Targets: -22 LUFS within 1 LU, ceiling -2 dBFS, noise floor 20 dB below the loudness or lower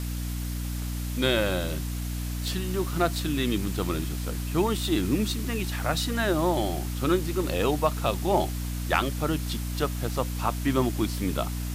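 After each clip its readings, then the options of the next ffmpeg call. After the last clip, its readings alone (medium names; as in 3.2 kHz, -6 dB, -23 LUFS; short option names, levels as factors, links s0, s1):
hum 60 Hz; highest harmonic 300 Hz; hum level -29 dBFS; noise floor -31 dBFS; noise floor target -48 dBFS; loudness -27.5 LUFS; peak level -7.5 dBFS; loudness target -22.0 LUFS
-> -af "bandreject=f=60:t=h:w=4,bandreject=f=120:t=h:w=4,bandreject=f=180:t=h:w=4,bandreject=f=240:t=h:w=4,bandreject=f=300:t=h:w=4"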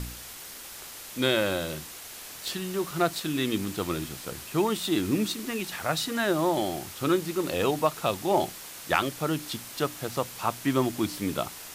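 hum not found; noise floor -43 dBFS; noise floor target -49 dBFS
-> -af "afftdn=nr=6:nf=-43"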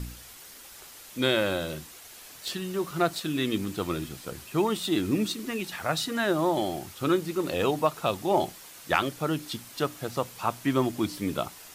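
noise floor -48 dBFS; noise floor target -49 dBFS
-> -af "afftdn=nr=6:nf=-48"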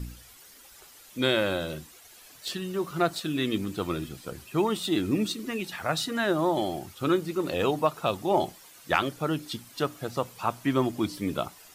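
noise floor -52 dBFS; loudness -28.5 LUFS; peak level -7.5 dBFS; loudness target -22.0 LUFS
-> -af "volume=2.11,alimiter=limit=0.794:level=0:latency=1"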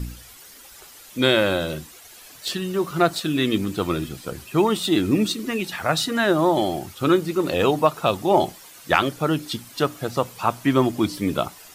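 loudness -22.5 LUFS; peak level -2.0 dBFS; noise floor -46 dBFS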